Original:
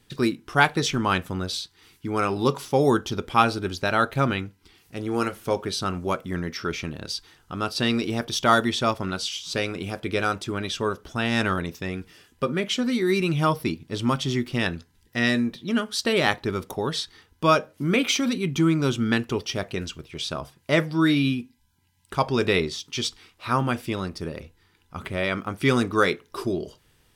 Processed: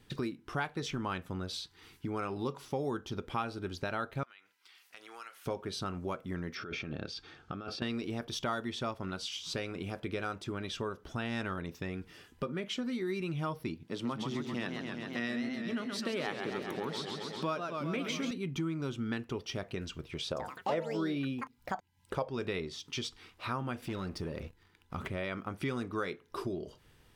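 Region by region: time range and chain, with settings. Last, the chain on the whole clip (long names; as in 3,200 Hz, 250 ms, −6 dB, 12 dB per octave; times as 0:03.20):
0:04.23–0:05.46: high-pass filter 1,300 Hz + downward compressor 3 to 1, threshold −47 dBFS
0:06.55–0:07.82: low-pass filter 4,700 Hz + compressor whose output falls as the input rises −35 dBFS + notch comb filter 990 Hz
0:13.86–0:18.31: high-pass filter 140 Hz 24 dB per octave + feedback echo with a swinging delay time 132 ms, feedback 70%, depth 169 cents, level −7 dB
0:20.27–0:22.30: parametric band 510 Hz +14 dB 0.58 octaves + delay with pitch and tempo change per echo 95 ms, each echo +6 semitones, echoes 3, each echo −6 dB
0:23.82–0:25.08: leveller curve on the samples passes 2 + downward compressor 1.5 to 1, threshold −38 dBFS
whole clip: parametric band 11,000 Hz −6.5 dB 2.4 octaves; downward compressor 3 to 1, threshold −37 dBFS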